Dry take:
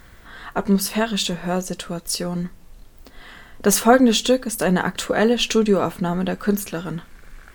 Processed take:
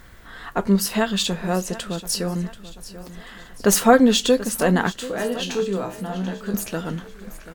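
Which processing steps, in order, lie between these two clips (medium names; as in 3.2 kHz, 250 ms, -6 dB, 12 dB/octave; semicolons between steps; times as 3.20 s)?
4.92–6.54 s: feedback comb 63 Hz, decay 0.32 s, harmonics all, mix 90%; feedback delay 735 ms, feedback 47%, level -16 dB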